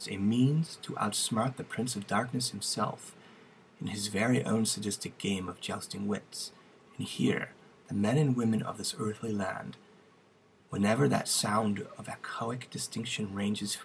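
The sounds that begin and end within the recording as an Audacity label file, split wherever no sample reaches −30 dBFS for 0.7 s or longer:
3.820000	9.600000	sound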